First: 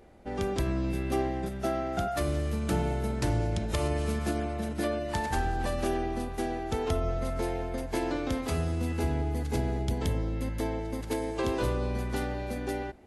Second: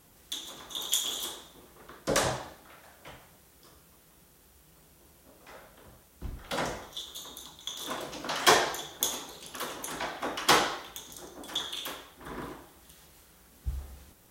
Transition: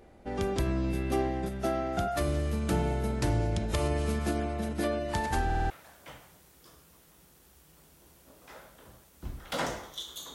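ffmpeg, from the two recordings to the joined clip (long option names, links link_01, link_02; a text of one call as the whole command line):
ffmpeg -i cue0.wav -i cue1.wav -filter_complex "[0:a]apad=whole_dur=10.34,atrim=end=10.34,asplit=5[link_01][link_02][link_03][link_04][link_05];[link_01]atrim=end=5.502[link_06];[link_02]atrim=start=5.448:end=5.502[link_07];[link_03]atrim=start=5.448:end=5.502[link_08];[link_04]atrim=start=5.448:end=5.502[link_09];[link_05]atrim=start=5.448:end=5.502[link_10];[1:a]atrim=start=2.688:end=7.33[link_11];[link_06][link_07]acrossfade=duration=0.004:curve1=hsin:curve2=hsin[link_12];[link_12][link_08]acrossfade=duration=0.004:curve1=hsin:curve2=hsin[link_13];[link_13][link_09]acrossfade=duration=0.004:curve1=hsin:curve2=hsin[link_14];[link_14][link_10]acrossfade=duration=0.004:curve1=hsin:curve2=hsin[link_15];[link_15][link_11]acrossfade=duration=0.004:curve1=hsin:curve2=hsin" out.wav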